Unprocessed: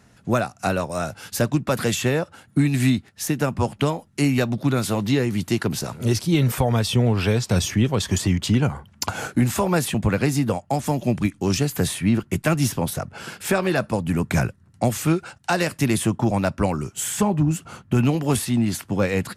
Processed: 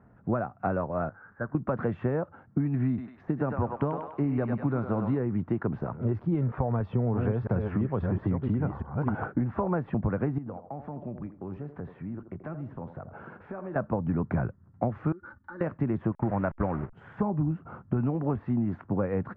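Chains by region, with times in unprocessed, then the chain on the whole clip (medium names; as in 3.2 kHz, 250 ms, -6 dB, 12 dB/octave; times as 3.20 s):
1.09–1.55 s: jump at every zero crossing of -31 dBFS + gate -21 dBFS, range -7 dB + four-pole ladder low-pass 1.7 kHz, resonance 70%
2.88–5.18 s: tone controls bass 0 dB, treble +7 dB + thinning echo 99 ms, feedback 57%, high-pass 700 Hz, level -5 dB
6.80–9.25 s: chunks repeated in reverse 337 ms, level -5 dB + high-pass 57 Hz
10.38–13.76 s: compression 3:1, threshold -36 dBFS + band-passed feedback delay 83 ms, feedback 41%, band-pass 510 Hz, level -8.5 dB
15.12–15.61 s: static phaser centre 2.6 kHz, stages 6 + comb 3.4 ms, depth 99% + compression 16:1, threshold -33 dBFS
16.12–16.93 s: send-on-delta sampling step -29 dBFS + gate -28 dBFS, range -11 dB + peaking EQ 2 kHz +7.5 dB 1.3 oct
whole clip: de-esser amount 45%; low-pass 1.4 kHz 24 dB/octave; compression, threshold -21 dBFS; trim -2.5 dB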